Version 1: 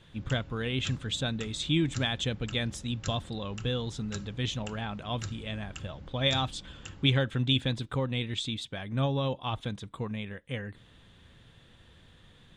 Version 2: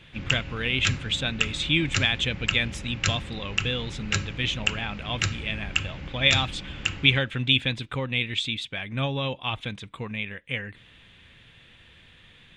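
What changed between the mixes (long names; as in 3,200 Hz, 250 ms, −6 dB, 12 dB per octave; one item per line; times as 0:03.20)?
background +10.5 dB
master: add parametric band 2,400 Hz +13.5 dB 0.99 octaves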